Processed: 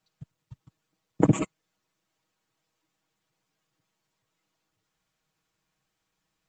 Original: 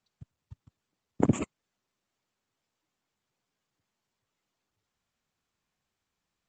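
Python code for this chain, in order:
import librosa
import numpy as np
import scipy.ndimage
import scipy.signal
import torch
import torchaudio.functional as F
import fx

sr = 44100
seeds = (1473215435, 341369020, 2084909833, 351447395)

y = x + 0.68 * np.pad(x, (int(6.3 * sr / 1000.0), 0))[:len(x)]
y = y * librosa.db_to_amplitude(2.5)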